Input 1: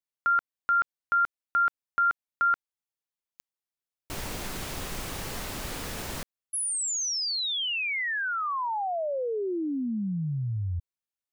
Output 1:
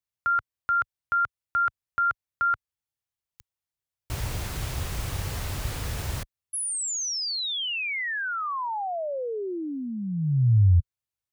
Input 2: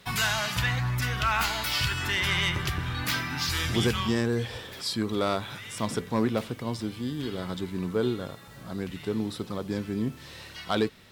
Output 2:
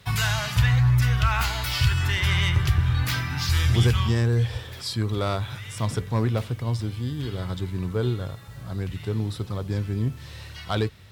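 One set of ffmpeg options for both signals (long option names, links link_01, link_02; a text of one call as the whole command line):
ffmpeg -i in.wav -af "highpass=40,lowshelf=frequency=150:width_type=q:width=1.5:gain=10.5" out.wav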